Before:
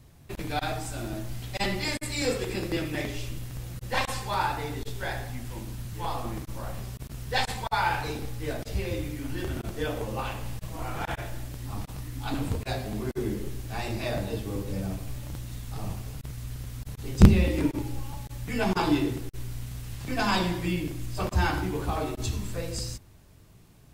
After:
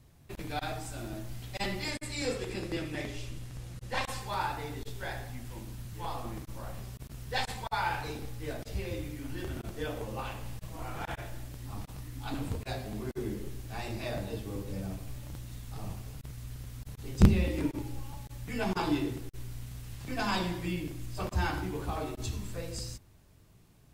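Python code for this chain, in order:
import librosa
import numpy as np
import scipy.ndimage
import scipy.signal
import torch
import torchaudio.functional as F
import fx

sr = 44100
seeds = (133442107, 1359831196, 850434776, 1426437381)

y = fx.lowpass(x, sr, hz=11000.0, slope=12, at=(1.9, 4.04))
y = F.gain(torch.from_numpy(y), -5.5).numpy()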